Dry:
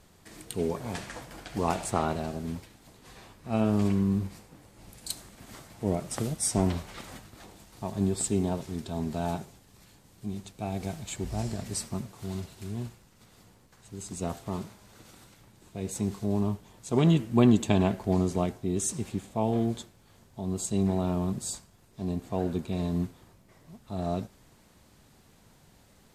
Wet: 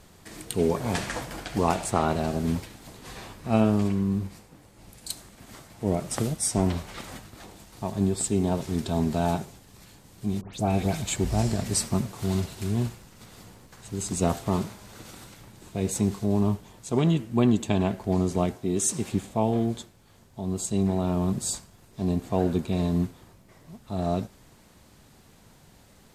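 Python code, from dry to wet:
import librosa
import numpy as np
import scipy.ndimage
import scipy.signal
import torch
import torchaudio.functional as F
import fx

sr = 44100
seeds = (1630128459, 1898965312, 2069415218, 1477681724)

y = fx.dispersion(x, sr, late='highs', ms=129.0, hz=2500.0, at=(10.41, 11.02))
y = fx.highpass(y, sr, hz=170.0, slope=6, at=(18.55, 19.12))
y = fx.rider(y, sr, range_db=5, speed_s=0.5)
y = y * librosa.db_to_amplitude(4.0)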